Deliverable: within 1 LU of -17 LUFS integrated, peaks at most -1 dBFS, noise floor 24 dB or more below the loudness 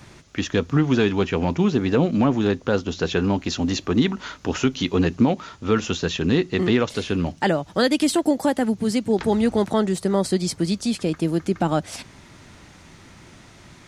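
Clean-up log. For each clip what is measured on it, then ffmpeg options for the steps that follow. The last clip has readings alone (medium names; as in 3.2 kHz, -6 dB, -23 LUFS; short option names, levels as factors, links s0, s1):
loudness -22.0 LUFS; peak level -8.0 dBFS; loudness target -17.0 LUFS
-> -af "volume=1.78"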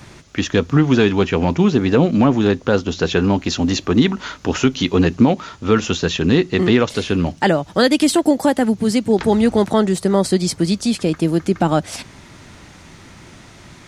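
loudness -17.0 LUFS; peak level -3.0 dBFS; noise floor -43 dBFS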